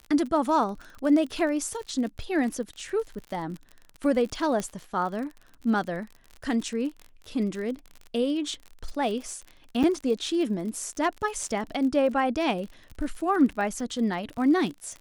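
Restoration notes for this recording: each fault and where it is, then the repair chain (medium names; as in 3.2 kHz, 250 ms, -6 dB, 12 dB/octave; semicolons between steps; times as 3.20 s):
crackle 45 per s -34 dBFS
4.60 s: pop -17 dBFS
9.83–9.84 s: dropout 6.9 ms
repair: de-click; interpolate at 9.83 s, 6.9 ms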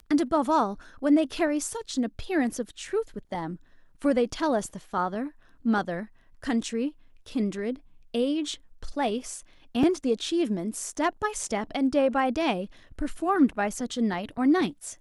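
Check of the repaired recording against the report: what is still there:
4.60 s: pop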